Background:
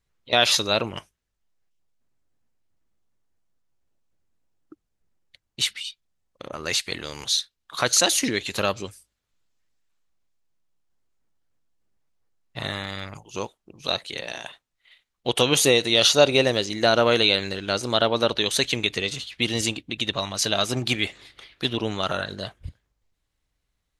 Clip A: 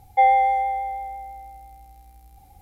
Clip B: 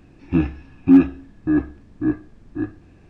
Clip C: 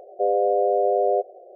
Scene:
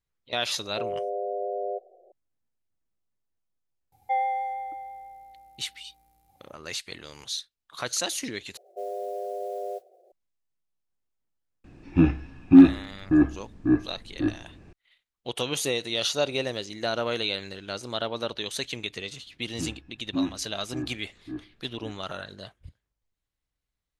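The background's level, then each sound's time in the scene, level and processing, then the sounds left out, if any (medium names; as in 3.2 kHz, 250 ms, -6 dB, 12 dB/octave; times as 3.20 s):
background -9.5 dB
0.57 s: add C -10.5 dB
3.92 s: add A -10 dB + high-pass 110 Hz
8.57 s: replace with C -13 dB + modulation noise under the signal 27 dB
11.64 s: add B -0.5 dB
19.26 s: add B -16 dB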